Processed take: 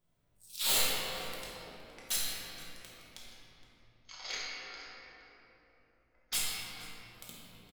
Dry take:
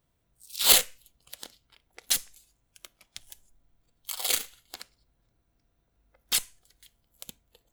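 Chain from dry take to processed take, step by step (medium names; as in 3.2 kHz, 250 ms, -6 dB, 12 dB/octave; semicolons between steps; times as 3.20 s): 3.27–6.33 s: rippled Chebyshev low-pass 6.7 kHz, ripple 9 dB; hard clipper -21 dBFS, distortion -5 dB; feedback comb 58 Hz, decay 0.7 s, harmonics all, mix 70%; echo from a far wall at 80 m, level -13 dB; reverberation RT60 3.5 s, pre-delay 5 ms, DRR -6.5 dB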